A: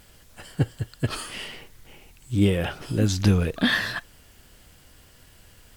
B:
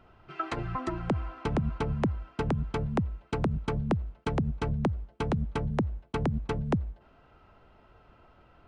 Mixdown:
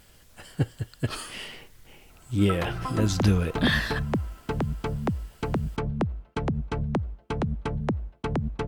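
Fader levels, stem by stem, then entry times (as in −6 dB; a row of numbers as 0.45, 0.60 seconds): −2.5, +1.0 decibels; 0.00, 2.10 seconds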